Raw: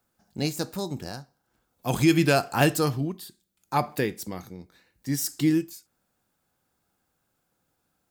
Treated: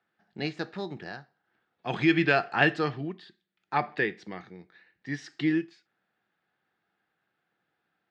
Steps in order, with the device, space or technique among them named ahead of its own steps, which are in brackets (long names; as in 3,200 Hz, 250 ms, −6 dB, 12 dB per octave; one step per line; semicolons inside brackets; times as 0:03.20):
kitchen radio (loudspeaker in its box 210–3,600 Hz, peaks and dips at 260 Hz −8 dB, 540 Hz −7 dB, 1,000 Hz −5 dB, 1,800 Hz +8 dB)